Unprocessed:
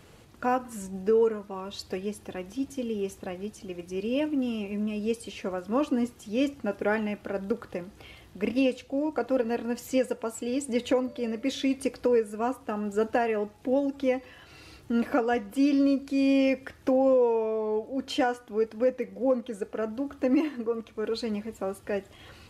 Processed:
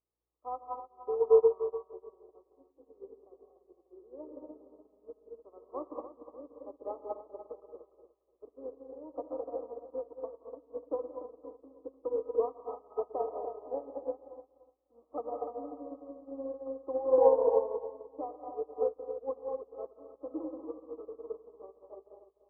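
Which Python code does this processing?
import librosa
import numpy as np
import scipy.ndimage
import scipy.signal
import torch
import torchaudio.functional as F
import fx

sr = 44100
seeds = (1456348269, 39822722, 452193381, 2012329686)

y = scipy.signal.sosfilt(scipy.signal.ellip(4, 1.0, 50, 320.0, 'highpass', fs=sr, output='sos'), x)
y = fx.add_hum(y, sr, base_hz=60, snr_db=27)
y = fx.brickwall_lowpass(y, sr, high_hz=1300.0)
y = fx.echo_feedback(y, sr, ms=296, feedback_pct=47, wet_db=-5.0)
y = fx.rev_gated(y, sr, seeds[0], gate_ms=260, shape='rising', drr_db=0.5)
y = fx.upward_expand(y, sr, threshold_db=-42.0, expansion=2.5)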